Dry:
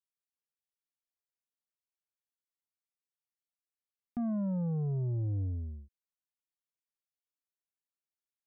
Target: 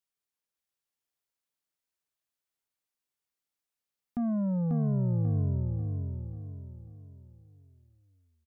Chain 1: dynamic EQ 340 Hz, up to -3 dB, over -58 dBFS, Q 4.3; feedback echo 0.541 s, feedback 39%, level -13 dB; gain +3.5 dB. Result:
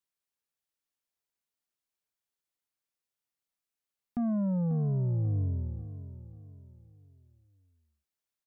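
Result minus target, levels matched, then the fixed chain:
echo-to-direct -9 dB
dynamic EQ 340 Hz, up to -3 dB, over -58 dBFS, Q 4.3; feedback echo 0.541 s, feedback 39%, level -4 dB; gain +3.5 dB

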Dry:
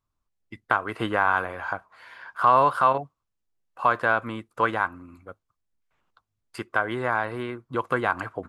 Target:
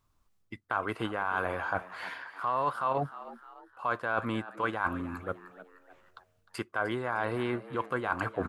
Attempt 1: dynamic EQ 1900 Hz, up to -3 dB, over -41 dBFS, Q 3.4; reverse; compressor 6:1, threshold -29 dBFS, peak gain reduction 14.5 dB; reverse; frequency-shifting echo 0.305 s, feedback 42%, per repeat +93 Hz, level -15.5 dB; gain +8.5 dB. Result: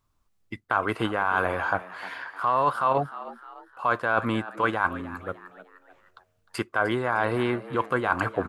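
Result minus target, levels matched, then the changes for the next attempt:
compressor: peak gain reduction -6.5 dB
change: compressor 6:1, threshold -37 dBFS, peak gain reduction 21.5 dB

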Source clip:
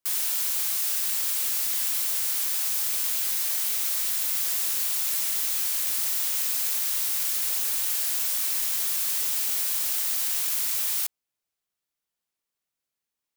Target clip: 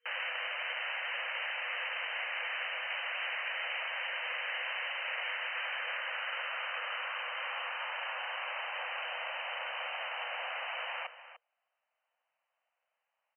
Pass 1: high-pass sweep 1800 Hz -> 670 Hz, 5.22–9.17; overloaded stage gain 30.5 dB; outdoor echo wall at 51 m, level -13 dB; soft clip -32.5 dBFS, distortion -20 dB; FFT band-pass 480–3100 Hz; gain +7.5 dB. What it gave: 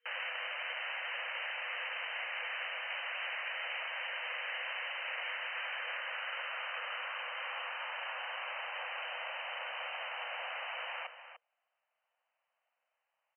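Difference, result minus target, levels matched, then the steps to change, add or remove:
soft clip: distortion +13 dB
change: soft clip -24.5 dBFS, distortion -33 dB

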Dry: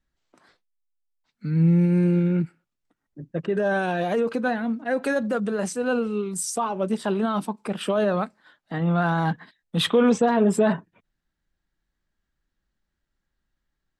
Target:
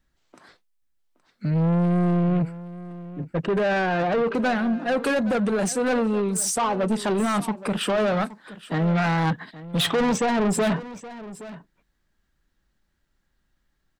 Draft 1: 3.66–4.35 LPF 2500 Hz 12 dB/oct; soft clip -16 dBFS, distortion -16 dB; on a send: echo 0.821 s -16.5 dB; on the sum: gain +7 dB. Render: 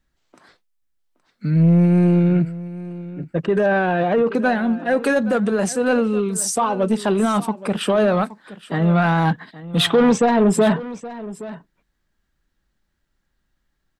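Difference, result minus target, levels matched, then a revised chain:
soft clip: distortion -9 dB
3.66–4.35 LPF 2500 Hz 12 dB/oct; soft clip -26 dBFS, distortion -7 dB; on a send: echo 0.821 s -16.5 dB; on the sum: gain +7 dB

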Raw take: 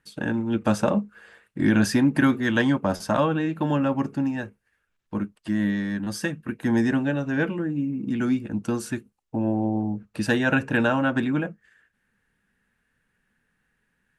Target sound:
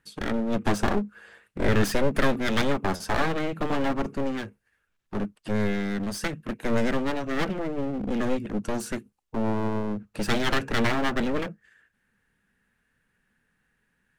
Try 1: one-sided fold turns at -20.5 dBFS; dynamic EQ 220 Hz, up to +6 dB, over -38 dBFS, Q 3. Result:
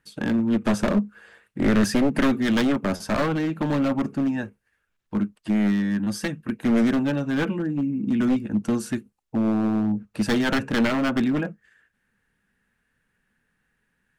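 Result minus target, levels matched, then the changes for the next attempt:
one-sided fold: distortion -14 dB
change: one-sided fold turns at -30.5 dBFS

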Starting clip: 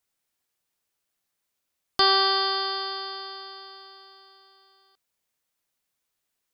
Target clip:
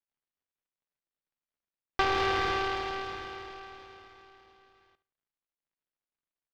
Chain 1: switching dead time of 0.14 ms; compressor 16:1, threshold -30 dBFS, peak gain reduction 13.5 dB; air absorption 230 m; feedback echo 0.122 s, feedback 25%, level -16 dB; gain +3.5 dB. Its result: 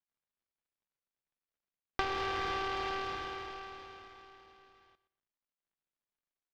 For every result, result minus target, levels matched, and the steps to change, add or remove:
echo 50 ms late; compressor: peak gain reduction +7.5 dB
change: feedback echo 72 ms, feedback 25%, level -16 dB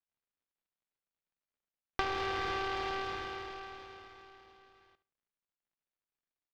compressor: peak gain reduction +7.5 dB
change: compressor 16:1, threshold -22 dBFS, peak gain reduction 6 dB

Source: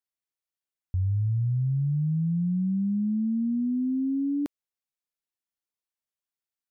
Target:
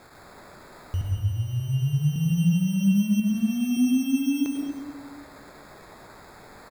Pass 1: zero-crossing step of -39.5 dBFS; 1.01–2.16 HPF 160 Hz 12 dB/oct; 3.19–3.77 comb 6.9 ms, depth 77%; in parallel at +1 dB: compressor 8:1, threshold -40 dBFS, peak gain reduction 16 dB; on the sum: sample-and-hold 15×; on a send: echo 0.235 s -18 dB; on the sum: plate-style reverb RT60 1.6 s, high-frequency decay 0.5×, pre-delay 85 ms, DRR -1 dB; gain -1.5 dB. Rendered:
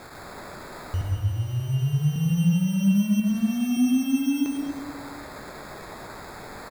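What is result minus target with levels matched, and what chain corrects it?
zero-crossing step: distortion +7 dB
zero-crossing step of -47 dBFS; 1.01–2.16 HPF 160 Hz 12 dB/oct; 3.19–3.77 comb 6.9 ms, depth 77%; in parallel at +1 dB: compressor 8:1, threshold -40 dBFS, peak gain reduction 15.5 dB; on the sum: sample-and-hold 15×; on a send: echo 0.235 s -18 dB; on the sum: plate-style reverb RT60 1.6 s, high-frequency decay 0.5×, pre-delay 85 ms, DRR -1 dB; gain -1.5 dB

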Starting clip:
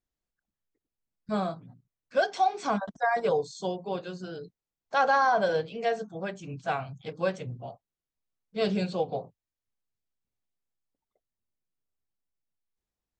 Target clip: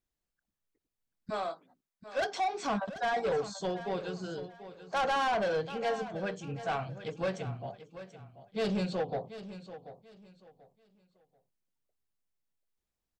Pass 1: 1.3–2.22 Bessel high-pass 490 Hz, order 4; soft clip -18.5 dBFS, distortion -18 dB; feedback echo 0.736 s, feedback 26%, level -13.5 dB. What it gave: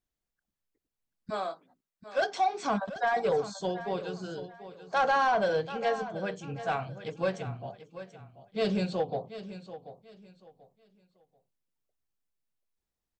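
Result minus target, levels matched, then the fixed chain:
soft clip: distortion -8 dB
1.3–2.22 Bessel high-pass 490 Hz, order 4; soft clip -26 dBFS, distortion -10 dB; feedback echo 0.736 s, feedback 26%, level -13.5 dB

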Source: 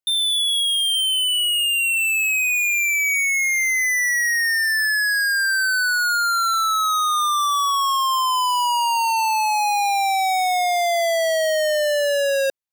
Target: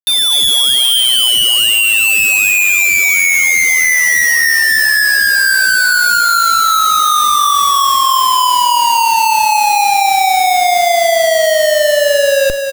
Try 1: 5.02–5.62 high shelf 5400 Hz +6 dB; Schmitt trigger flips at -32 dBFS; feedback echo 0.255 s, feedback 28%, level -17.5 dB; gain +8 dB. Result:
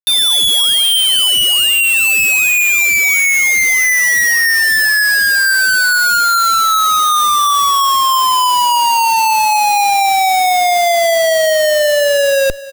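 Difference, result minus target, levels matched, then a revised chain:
echo-to-direct -11.5 dB
5.02–5.62 high shelf 5400 Hz +6 dB; Schmitt trigger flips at -32 dBFS; feedback echo 0.255 s, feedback 28%, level -6 dB; gain +8 dB

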